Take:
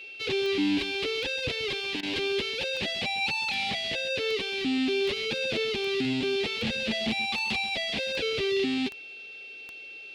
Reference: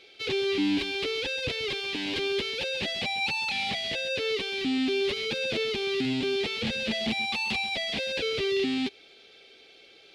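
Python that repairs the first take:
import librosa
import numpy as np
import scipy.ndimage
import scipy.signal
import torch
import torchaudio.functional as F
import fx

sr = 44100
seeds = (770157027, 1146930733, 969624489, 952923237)

y = fx.fix_declick_ar(x, sr, threshold=10.0)
y = fx.notch(y, sr, hz=2700.0, q=30.0)
y = fx.fix_interpolate(y, sr, at_s=(2.01,), length_ms=18.0)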